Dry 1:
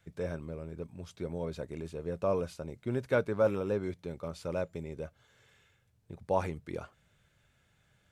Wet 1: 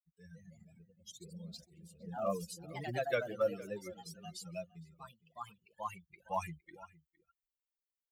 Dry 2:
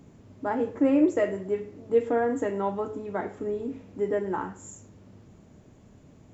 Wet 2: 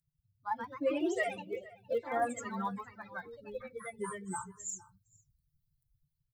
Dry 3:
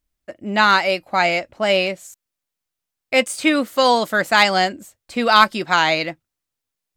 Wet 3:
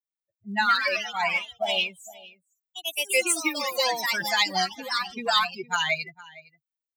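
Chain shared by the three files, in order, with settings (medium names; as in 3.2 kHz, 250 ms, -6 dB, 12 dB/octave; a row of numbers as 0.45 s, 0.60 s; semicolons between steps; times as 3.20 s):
expander on every frequency bin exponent 3; treble shelf 6 kHz -9.5 dB; compression 4:1, threshold -24 dBFS; ever faster or slower copies 180 ms, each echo +2 st, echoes 3, each echo -6 dB; level rider gain up to 8.5 dB; phaser 0.44 Hz, delay 2.3 ms, feedback 33%; pre-emphasis filter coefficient 0.9; comb 5.8 ms, depth 48%; echo from a far wall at 79 m, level -19 dB; trim +6 dB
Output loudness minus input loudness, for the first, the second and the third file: -5.5 LU, -9.5 LU, -7.5 LU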